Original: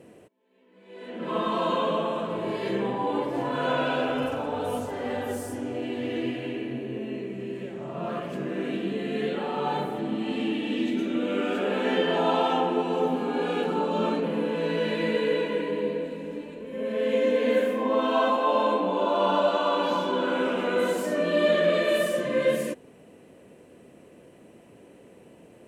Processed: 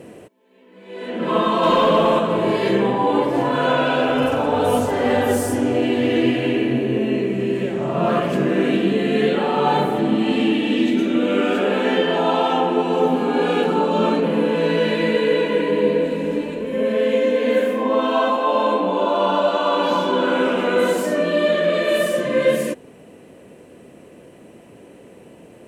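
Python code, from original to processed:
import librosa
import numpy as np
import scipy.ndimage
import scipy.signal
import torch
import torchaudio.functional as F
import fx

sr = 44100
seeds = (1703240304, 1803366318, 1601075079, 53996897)

y = fx.rider(x, sr, range_db=5, speed_s=0.5)
y = fx.leveller(y, sr, passes=1, at=(1.63, 2.19))
y = y * 10.0 ** (8.0 / 20.0)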